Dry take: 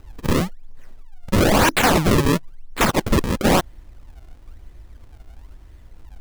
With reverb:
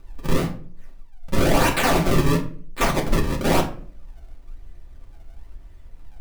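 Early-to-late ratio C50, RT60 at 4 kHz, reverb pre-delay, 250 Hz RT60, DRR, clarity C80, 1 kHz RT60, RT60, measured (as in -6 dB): 10.5 dB, 0.30 s, 3 ms, 0.65 s, -1.0 dB, 15.5 dB, 0.40 s, 0.45 s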